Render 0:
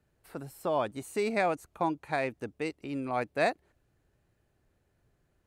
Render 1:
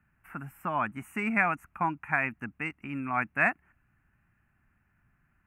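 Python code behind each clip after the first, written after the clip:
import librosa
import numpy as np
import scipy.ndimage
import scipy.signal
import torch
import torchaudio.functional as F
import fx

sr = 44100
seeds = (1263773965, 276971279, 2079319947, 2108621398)

y = fx.curve_eq(x, sr, hz=(120.0, 220.0, 490.0, 740.0, 1400.0, 2700.0, 3900.0, 6200.0, 8900.0, 13000.0), db=(0, 4, -18, -3, 9, 4, -30, -13, -10, -4))
y = y * librosa.db_to_amplitude(1.5)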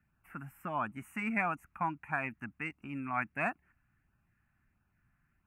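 y = fx.filter_lfo_notch(x, sr, shape='sine', hz=1.5, low_hz=390.0, high_hz=2100.0, q=2.3)
y = y * librosa.db_to_amplitude(-4.5)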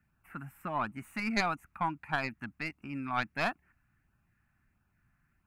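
y = fx.tracing_dist(x, sr, depth_ms=0.11)
y = y * librosa.db_to_amplitude(1.5)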